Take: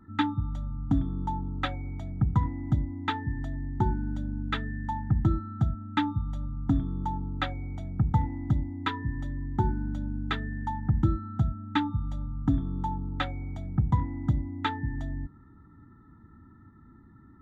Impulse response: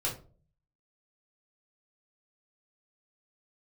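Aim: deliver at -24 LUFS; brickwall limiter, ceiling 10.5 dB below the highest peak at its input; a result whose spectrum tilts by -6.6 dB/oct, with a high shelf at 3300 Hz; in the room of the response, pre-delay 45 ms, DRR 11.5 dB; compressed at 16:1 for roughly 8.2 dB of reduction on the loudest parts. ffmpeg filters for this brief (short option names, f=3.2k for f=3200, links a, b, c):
-filter_complex "[0:a]highshelf=f=3.3k:g=7.5,acompressor=threshold=-27dB:ratio=16,alimiter=level_in=1.5dB:limit=-24dB:level=0:latency=1,volume=-1.5dB,asplit=2[a][b];[1:a]atrim=start_sample=2205,adelay=45[c];[b][c]afir=irnorm=-1:irlink=0,volume=-16.5dB[d];[a][d]amix=inputs=2:normalize=0,volume=11.5dB"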